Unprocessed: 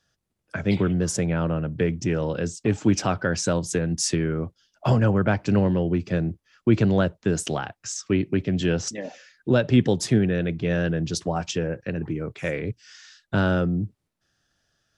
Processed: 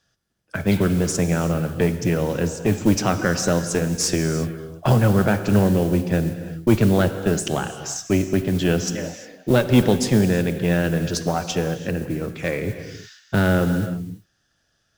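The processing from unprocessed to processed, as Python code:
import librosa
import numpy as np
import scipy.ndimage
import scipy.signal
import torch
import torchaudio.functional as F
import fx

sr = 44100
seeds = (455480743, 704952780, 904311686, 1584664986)

y = fx.cheby_harmonics(x, sr, harmonics=(4,), levels_db=(-19,), full_scale_db=-6.0)
y = fx.mod_noise(y, sr, seeds[0], snr_db=23)
y = fx.rev_gated(y, sr, seeds[1], gate_ms=380, shape='flat', drr_db=9.0)
y = y * librosa.db_to_amplitude(2.5)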